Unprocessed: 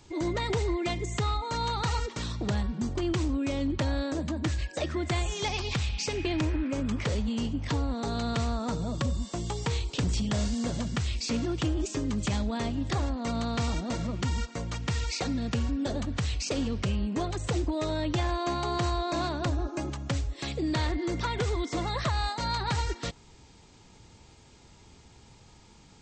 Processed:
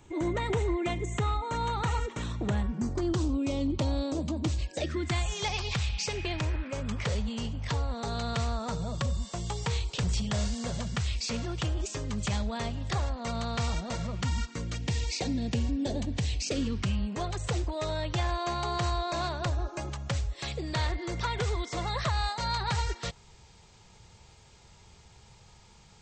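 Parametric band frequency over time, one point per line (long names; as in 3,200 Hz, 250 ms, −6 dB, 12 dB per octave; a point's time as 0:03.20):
parametric band −14 dB 0.54 octaves
0:02.62 4,800 Hz
0:03.38 1,700 Hz
0:04.65 1,700 Hz
0:05.34 290 Hz
0:14.16 290 Hz
0:14.88 1,300 Hz
0:16.39 1,300 Hz
0:17.12 280 Hz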